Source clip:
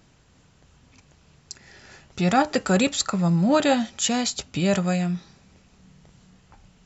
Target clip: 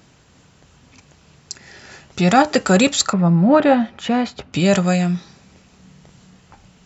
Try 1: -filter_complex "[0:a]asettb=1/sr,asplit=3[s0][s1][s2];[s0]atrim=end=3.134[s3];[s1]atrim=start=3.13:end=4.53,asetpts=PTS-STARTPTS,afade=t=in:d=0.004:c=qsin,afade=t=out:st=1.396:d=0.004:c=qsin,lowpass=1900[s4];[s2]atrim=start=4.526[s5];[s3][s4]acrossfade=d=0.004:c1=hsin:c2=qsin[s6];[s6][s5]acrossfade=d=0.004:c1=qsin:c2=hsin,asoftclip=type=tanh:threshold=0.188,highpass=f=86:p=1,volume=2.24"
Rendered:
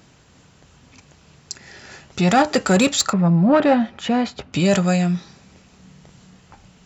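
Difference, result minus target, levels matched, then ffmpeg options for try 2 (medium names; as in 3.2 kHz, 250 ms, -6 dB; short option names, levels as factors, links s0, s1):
saturation: distortion +16 dB
-filter_complex "[0:a]asettb=1/sr,asplit=3[s0][s1][s2];[s0]atrim=end=3.134[s3];[s1]atrim=start=3.13:end=4.53,asetpts=PTS-STARTPTS,afade=t=in:d=0.004:c=qsin,afade=t=out:st=1.396:d=0.004:c=qsin,lowpass=1900[s4];[s2]atrim=start=4.526[s5];[s3][s4]acrossfade=d=0.004:c1=hsin:c2=qsin[s6];[s6][s5]acrossfade=d=0.004:c1=qsin:c2=hsin,asoftclip=type=tanh:threshold=0.596,highpass=f=86:p=1,volume=2.24"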